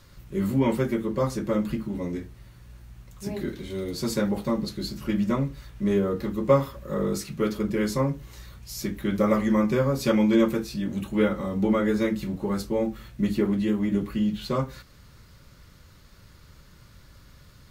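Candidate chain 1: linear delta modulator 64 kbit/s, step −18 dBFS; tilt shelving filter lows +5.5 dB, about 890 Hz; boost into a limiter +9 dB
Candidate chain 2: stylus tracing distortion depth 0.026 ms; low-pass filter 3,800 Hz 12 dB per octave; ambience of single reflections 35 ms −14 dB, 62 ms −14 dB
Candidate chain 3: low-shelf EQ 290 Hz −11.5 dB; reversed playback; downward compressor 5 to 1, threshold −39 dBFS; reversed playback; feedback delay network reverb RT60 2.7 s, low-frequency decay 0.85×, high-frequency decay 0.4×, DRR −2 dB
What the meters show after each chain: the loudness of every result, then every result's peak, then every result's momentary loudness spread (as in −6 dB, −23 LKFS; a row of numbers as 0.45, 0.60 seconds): −12.0, −26.0, −38.0 LKFS; −1.0, −7.0, −23.5 dBFS; 4, 10, 17 LU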